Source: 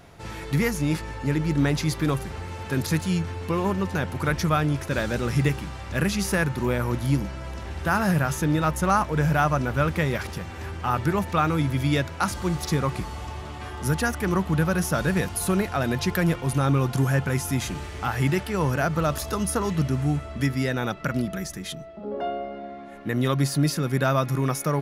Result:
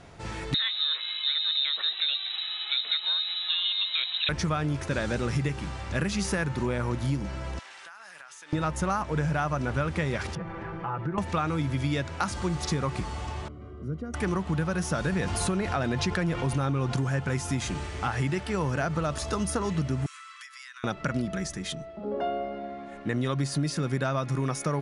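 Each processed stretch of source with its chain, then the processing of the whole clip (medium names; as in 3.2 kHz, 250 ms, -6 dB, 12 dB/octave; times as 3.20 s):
0.54–4.29 s: frequency inversion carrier 3.9 kHz + high-pass 670 Hz
7.59–8.53 s: high-pass 1.3 kHz + compression 16:1, threshold -42 dBFS
10.35–11.18 s: low-pass 1.6 kHz + comb 6 ms, depth 98% + compression 2.5:1, threshold -32 dBFS
13.48–14.14 s: bass shelf 110 Hz -8.5 dB + compression 1.5:1, threshold -34 dBFS + boxcar filter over 51 samples
15.12–17.09 s: treble shelf 8.4 kHz -7.5 dB + level flattener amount 50%
20.06–20.84 s: brick-wall FIR high-pass 1 kHz + treble shelf 4.3 kHz +3.5 dB + compression 12:1, threshold -41 dBFS
whole clip: steep low-pass 9.9 kHz 72 dB/octave; compression, threshold -24 dBFS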